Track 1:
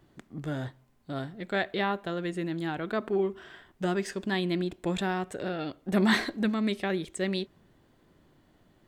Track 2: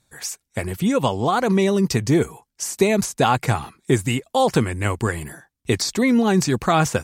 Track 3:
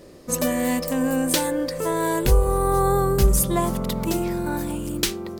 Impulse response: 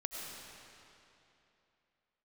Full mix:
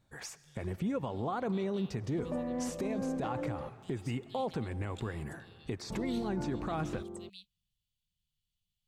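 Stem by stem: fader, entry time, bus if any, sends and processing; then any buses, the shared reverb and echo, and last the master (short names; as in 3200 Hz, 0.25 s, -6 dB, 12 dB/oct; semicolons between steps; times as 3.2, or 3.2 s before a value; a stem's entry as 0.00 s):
-11.5 dB, 0.00 s, no send, elliptic band-stop 210–2800 Hz; passive tone stack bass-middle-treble 10-0-10
-3.5 dB, 0.00 s, send -14.5 dB, LPF 1300 Hz 6 dB/oct; compressor 4:1, threshold -30 dBFS, peak gain reduction 15 dB
-12.0 dB, 1.90 s, muted 3.69–5.9, no send, LPF 1000 Hz 12 dB/oct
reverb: on, RT60 3.0 s, pre-delay 60 ms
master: limiter -26 dBFS, peak gain reduction 7.5 dB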